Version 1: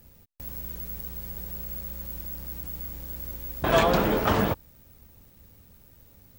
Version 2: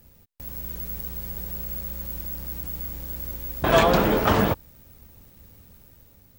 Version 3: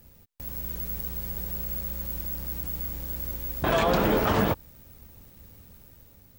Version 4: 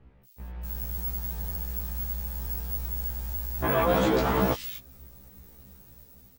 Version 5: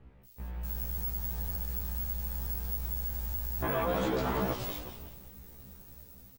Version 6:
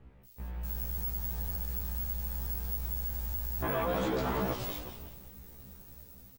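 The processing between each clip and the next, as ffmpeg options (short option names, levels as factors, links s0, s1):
-af "dynaudnorm=f=160:g=7:m=1.5"
-af "alimiter=limit=0.211:level=0:latency=1:release=90"
-filter_complex "[0:a]acrossover=split=2800[s0][s1];[s1]adelay=250[s2];[s0][s2]amix=inputs=2:normalize=0,afftfilt=real='re*1.73*eq(mod(b,3),0)':imag='im*1.73*eq(mod(b,3),0)':win_size=2048:overlap=0.75,volume=1.26"
-filter_complex "[0:a]asplit=2[s0][s1];[s1]asplit=4[s2][s3][s4][s5];[s2]adelay=182,afreqshift=-73,volume=0.251[s6];[s3]adelay=364,afreqshift=-146,volume=0.104[s7];[s4]adelay=546,afreqshift=-219,volume=0.0422[s8];[s5]adelay=728,afreqshift=-292,volume=0.0174[s9];[s6][s7][s8][s9]amix=inputs=4:normalize=0[s10];[s0][s10]amix=inputs=2:normalize=0,acompressor=threshold=0.0224:ratio=2"
-af "asoftclip=type=tanh:threshold=0.0891"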